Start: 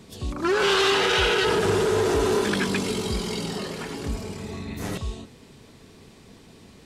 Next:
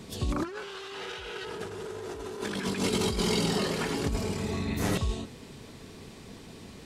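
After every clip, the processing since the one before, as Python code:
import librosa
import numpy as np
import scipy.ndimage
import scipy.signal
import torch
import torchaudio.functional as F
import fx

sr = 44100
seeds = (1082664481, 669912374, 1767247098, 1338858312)

y = fx.over_compress(x, sr, threshold_db=-28.0, ratio=-0.5)
y = F.gain(torch.from_numpy(y), -2.0).numpy()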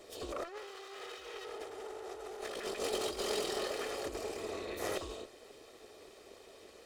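y = fx.lower_of_two(x, sr, delay_ms=1.6)
y = fx.low_shelf_res(y, sr, hz=240.0, db=-12.5, q=3.0)
y = F.gain(torch.from_numpy(y), -7.0).numpy()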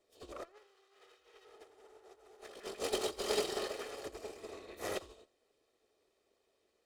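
y = x + 10.0 ** (-13.0 / 20.0) * np.pad(x, (int(83 * sr / 1000.0), 0))[:len(x)]
y = fx.upward_expand(y, sr, threshold_db=-49.0, expansion=2.5)
y = F.gain(torch.from_numpy(y), 4.0).numpy()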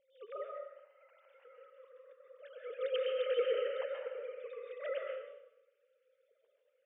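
y = fx.sine_speech(x, sr)
y = fx.rev_plate(y, sr, seeds[0], rt60_s=0.87, hf_ratio=0.85, predelay_ms=115, drr_db=1.0)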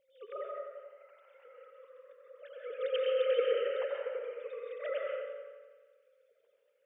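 y = fx.echo_wet_lowpass(x, sr, ms=88, feedback_pct=66, hz=2200.0, wet_db=-7)
y = F.gain(torch.from_numpy(y), 2.0).numpy()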